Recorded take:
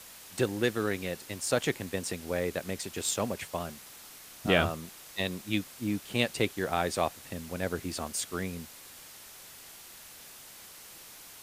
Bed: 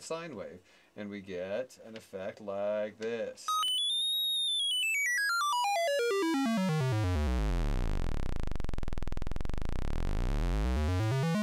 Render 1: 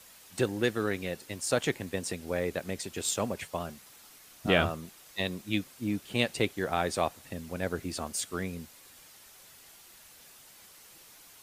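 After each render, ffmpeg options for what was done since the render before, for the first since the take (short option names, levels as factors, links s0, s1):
-af "afftdn=nr=6:nf=-50"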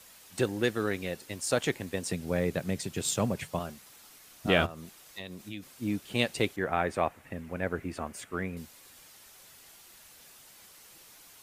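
-filter_complex "[0:a]asettb=1/sr,asplit=3[s0][s1][s2];[s0]atrim=end=2.124[s3];[s1]atrim=start=2.12:end=3.59,asetpts=PTS-STARTPTS,afade=t=in:d=0.004:c=qsin,afade=t=out:st=1.466:d=0.004:c=qsin,equalizer=f=140:t=o:w=1.2:g=10.5[s4];[s2]atrim=start=3.586[s5];[s3][s4]acrossfade=d=0.004:c1=hsin:c2=qsin[s6];[s6][s5]acrossfade=d=0.004:c1=qsin:c2=hsin,asplit=3[s7][s8][s9];[s7]afade=t=out:st=4.65:d=0.02[s10];[s8]acompressor=threshold=0.0112:ratio=3:attack=3.2:release=140:knee=1:detection=peak,afade=t=in:st=4.65:d=0.02,afade=t=out:st=5.62:d=0.02[s11];[s9]afade=t=in:st=5.62:d=0.02[s12];[s10][s11][s12]amix=inputs=3:normalize=0,asettb=1/sr,asplit=3[s13][s14][s15];[s13]atrim=end=6.564[s16];[s14]atrim=start=6.56:end=8.57,asetpts=PTS-STARTPTS,afade=t=in:d=0.004:c=qsin,afade=t=out:st=2.006:d=0.004:c=qsin,highshelf=f=3000:t=q:w=1.5:g=-10[s17];[s15]atrim=start=8.566[s18];[s16][s17]acrossfade=d=0.004:c1=hsin:c2=qsin[s19];[s19][s18]acrossfade=d=0.004:c1=qsin:c2=hsin"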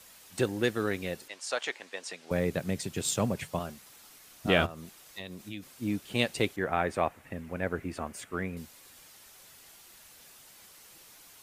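-filter_complex "[0:a]asettb=1/sr,asplit=3[s0][s1][s2];[s0]atrim=end=1.284[s3];[s1]atrim=start=1.28:end=2.31,asetpts=PTS-STARTPTS,afade=t=in:d=0.004:c=qsin,afade=t=out:st=1.026:d=0.004:c=qsin,highpass=710,lowpass=6100[s4];[s2]atrim=start=2.306[s5];[s3][s4]acrossfade=d=0.004:c1=hsin:c2=qsin[s6];[s6][s5]acrossfade=d=0.004:c1=qsin:c2=hsin"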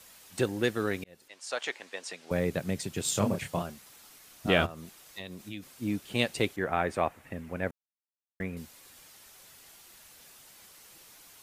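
-filter_complex "[0:a]asettb=1/sr,asplit=3[s0][s1][s2];[s0]atrim=end=3.114[s3];[s1]atrim=start=3.11:end=3.62,asetpts=PTS-STARTPTS,afade=t=in:d=0.004:c=qsin,afade=t=out:st=0.506:d=0.004:c=qsin,asplit=2[s4][s5];[s5]adelay=29,volume=0.596[s6];[s4][s6]amix=inputs=2:normalize=0,atrim=end_sample=22491[s7];[s2]atrim=start=3.616[s8];[s3][s7]acrossfade=d=0.004:c1=hsin:c2=qsin[s9];[s9][s8]acrossfade=d=0.004:c1=qsin:c2=hsin,asplit=4[s10][s11][s12][s13];[s10]atrim=end=1.04,asetpts=PTS-STARTPTS,afade=t=out:st=1.036:d=0.004:c=hsin[s14];[s11]atrim=start=1.04:end=7.71,asetpts=PTS-STARTPTS,afade=t=in:d=0.63,afade=t=out:st=6.666:d=0.004:c=hsin[s15];[s12]atrim=start=7.71:end=8.4,asetpts=PTS-STARTPTS,volume=0[s16];[s13]atrim=start=8.4,asetpts=PTS-STARTPTS,afade=t=in:d=0.004:c=hsin[s17];[s14][s15][s16][s17]concat=n=4:v=0:a=1"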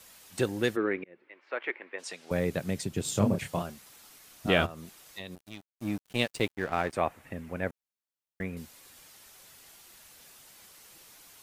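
-filter_complex "[0:a]asplit=3[s0][s1][s2];[s0]afade=t=out:st=0.75:d=0.02[s3];[s1]highpass=220,equalizer=f=350:t=q:w=4:g=8,equalizer=f=730:t=q:w=4:g=-5,equalizer=f=2200:t=q:w=4:g=6,lowpass=f=2300:w=0.5412,lowpass=f=2300:w=1.3066,afade=t=in:st=0.75:d=0.02,afade=t=out:st=1.98:d=0.02[s4];[s2]afade=t=in:st=1.98:d=0.02[s5];[s3][s4][s5]amix=inputs=3:normalize=0,asettb=1/sr,asplit=3[s6][s7][s8];[s6]atrim=end=2.844[s9];[s7]atrim=start=2.84:end=3.39,asetpts=PTS-STARTPTS,afade=t=in:d=0.004:c=qsin,afade=t=out:st=0.546:d=0.004:c=qsin,tiltshelf=f=650:g=4[s10];[s8]atrim=start=3.386[s11];[s9][s10]acrossfade=d=0.004:c1=hsin:c2=qsin[s12];[s12][s11]acrossfade=d=0.004:c1=qsin:c2=hsin,asettb=1/sr,asplit=3[s13][s14][s15];[s13]atrim=end=5.354[s16];[s14]atrim=start=5.35:end=6.93,asetpts=PTS-STARTPTS,afade=t=in:d=0.004:c=qsin,afade=t=out:st=1.576:d=0.004:c=qsin,aeval=exprs='sgn(val(0))*max(abs(val(0))-0.0075,0)':c=same[s17];[s15]atrim=start=6.926[s18];[s16][s17]acrossfade=d=0.004:c1=hsin:c2=qsin[s19];[s19][s18]acrossfade=d=0.004:c1=qsin:c2=hsin"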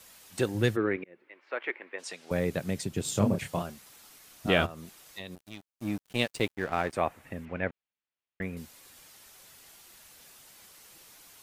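-filter_complex "[0:a]asettb=1/sr,asplit=3[s0][s1][s2];[s0]atrim=end=0.544[s3];[s1]atrim=start=0.54:end=0.97,asetpts=PTS-STARTPTS,afade=t=in:d=0.004:c=qsin,afade=t=out:st=0.426:d=0.004:c=qsin,equalizer=f=110:w=1.5:g=11.5[s4];[s2]atrim=start=0.966[s5];[s3][s4]acrossfade=d=0.004:c1=hsin:c2=qsin[s6];[s6][s5]acrossfade=d=0.004:c1=qsin:c2=hsin,asettb=1/sr,asplit=3[s7][s8][s9];[s7]atrim=end=7.454[s10];[s8]atrim=start=7.45:end=8.42,asetpts=PTS-STARTPTS,afade=t=in:d=0.004:c=qsin,afade=t=out:st=0.966:d=0.004:c=qsin,lowpass=f=2800:t=q:w=1.5[s11];[s9]atrim=start=8.416[s12];[s10][s11]acrossfade=d=0.004:c1=hsin:c2=qsin[s13];[s13][s12]acrossfade=d=0.004:c1=qsin:c2=hsin"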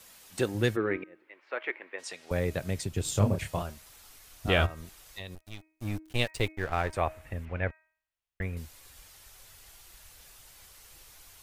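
-af "bandreject=f=315:t=h:w=4,bandreject=f=630:t=h:w=4,bandreject=f=945:t=h:w=4,bandreject=f=1260:t=h:w=4,bandreject=f=1575:t=h:w=4,bandreject=f=1890:t=h:w=4,bandreject=f=2205:t=h:w=4,bandreject=f=2520:t=h:w=4,asubboost=boost=10:cutoff=65"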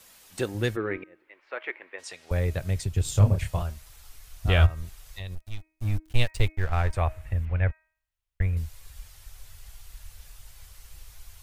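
-af "asubboost=boost=6.5:cutoff=100"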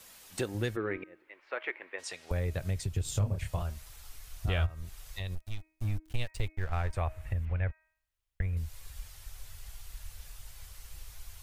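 -af "acompressor=threshold=0.0282:ratio=2.5"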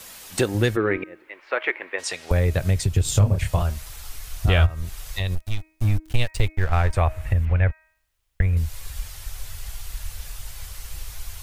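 -af "volume=3.98"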